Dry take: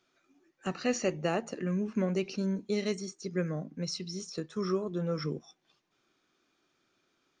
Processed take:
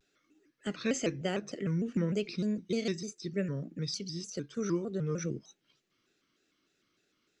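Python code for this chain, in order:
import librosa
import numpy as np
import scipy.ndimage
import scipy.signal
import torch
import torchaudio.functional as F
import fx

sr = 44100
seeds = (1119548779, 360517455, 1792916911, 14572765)

y = fx.peak_eq(x, sr, hz=870.0, db=-13.5, octaves=0.74)
y = fx.vibrato_shape(y, sr, shape='square', rate_hz=3.3, depth_cents=160.0)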